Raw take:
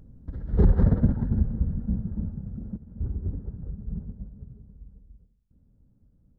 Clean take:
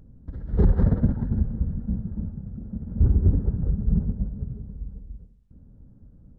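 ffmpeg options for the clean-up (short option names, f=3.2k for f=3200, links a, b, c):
-af "asetnsamples=n=441:p=0,asendcmd='2.76 volume volume 11.5dB',volume=0dB"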